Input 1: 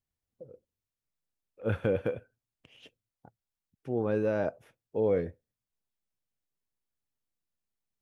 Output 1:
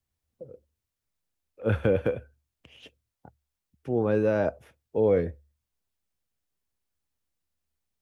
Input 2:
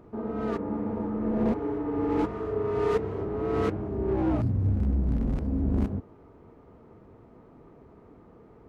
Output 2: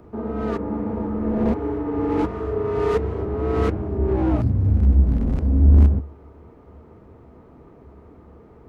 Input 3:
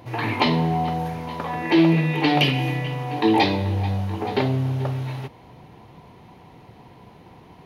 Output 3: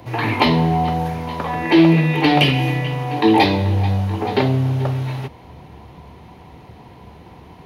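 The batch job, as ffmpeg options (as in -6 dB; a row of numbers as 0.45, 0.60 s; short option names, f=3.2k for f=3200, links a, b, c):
-filter_complex "[0:a]equalizer=f=72:w=6.6:g=15,acrossover=split=130|700|3400[a][b][c][d];[d]asoftclip=type=tanh:threshold=-26.5dB[e];[a][b][c][e]amix=inputs=4:normalize=0,volume=4.5dB"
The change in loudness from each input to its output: +4.5, +7.5, +4.5 LU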